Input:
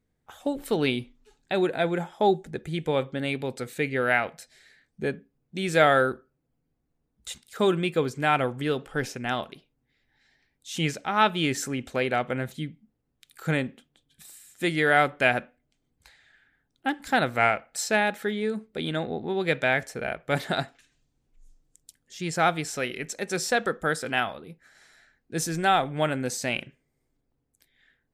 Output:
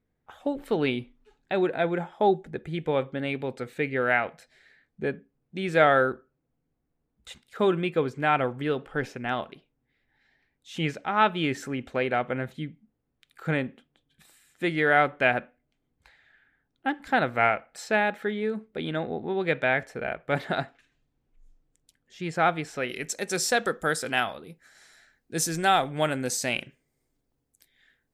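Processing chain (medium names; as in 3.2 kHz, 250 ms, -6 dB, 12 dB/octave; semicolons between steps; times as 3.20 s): tone controls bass -2 dB, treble -13 dB, from 22.88 s treble +4 dB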